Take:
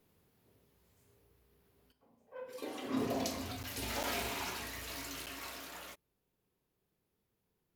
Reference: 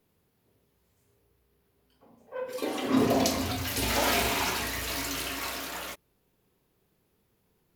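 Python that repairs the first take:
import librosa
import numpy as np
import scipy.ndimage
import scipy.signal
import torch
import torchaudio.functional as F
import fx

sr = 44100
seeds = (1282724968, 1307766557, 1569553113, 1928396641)

y = fx.fix_interpolate(x, sr, at_s=(3.63, 4.03, 5.26), length_ms=7.8)
y = fx.fix_level(y, sr, at_s=1.92, step_db=11.0)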